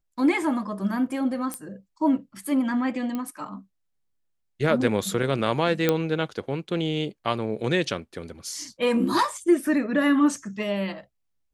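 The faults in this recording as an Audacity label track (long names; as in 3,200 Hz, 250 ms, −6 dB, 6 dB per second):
1.540000	1.540000	click −16 dBFS
3.150000	3.150000	click −18 dBFS
5.890000	5.890000	click −7 dBFS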